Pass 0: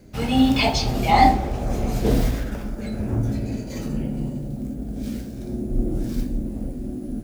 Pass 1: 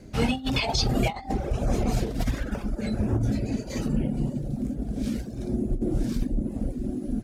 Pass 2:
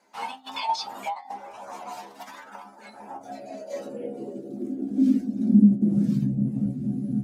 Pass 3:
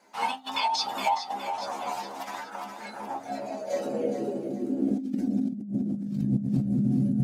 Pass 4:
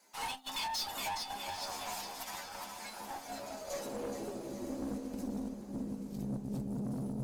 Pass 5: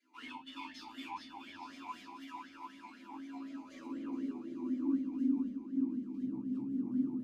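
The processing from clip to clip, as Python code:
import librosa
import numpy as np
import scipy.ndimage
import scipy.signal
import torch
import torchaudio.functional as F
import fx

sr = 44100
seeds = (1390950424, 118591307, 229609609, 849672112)

y1 = fx.dereverb_blind(x, sr, rt60_s=0.79)
y1 = scipy.signal.sosfilt(scipy.signal.butter(2, 11000.0, 'lowpass', fs=sr, output='sos'), y1)
y1 = fx.over_compress(y1, sr, threshold_db=-23.0, ratio=-0.5)
y2 = fx.peak_eq(y1, sr, hz=210.0, db=10.5, octaves=1.0)
y2 = fx.stiff_resonator(y2, sr, f0_hz=66.0, decay_s=0.25, stiffness=0.002)
y2 = fx.filter_sweep_highpass(y2, sr, from_hz=930.0, to_hz=140.0, start_s=2.92, end_s=6.28, q=7.2)
y2 = y2 * 10.0 ** (-1.5 / 20.0)
y3 = fx.echo_feedback(y2, sr, ms=416, feedback_pct=51, wet_db=-9)
y3 = fx.over_compress(y3, sr, threshold_db=-27.0, ratio=-1.0)
y3 = fx.am_noise(y3, sr, seeds[0], hz=5.7, depth_pct=55)
y3 = y3 * 10.0 ** (3.0 / 20.0)
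y4 = librosa.effects.preemphasis(y3, coef=0.8, zi=[0.0])
y4 = fx.tube_stage(y4, sr, drive_db=40.0, bias=0.6)
y4 = fx.echo_diffused(y4, sr, ms=909, feedback_pct=40, wet_db=-9.5)
y4 = y4 * 10.0 ** (6.5 / 20.0)
y5 = fx.room_shoebox(y4, sr, seeds[1], volume_m3=200.0, walls='furnished', distance_m=3.1)
y5 = fx.vowel_sweep(y5, sr, vowels='i-u', hz=4.0)
y5 = y5 * 10.0 ** (1.0 / 20.0)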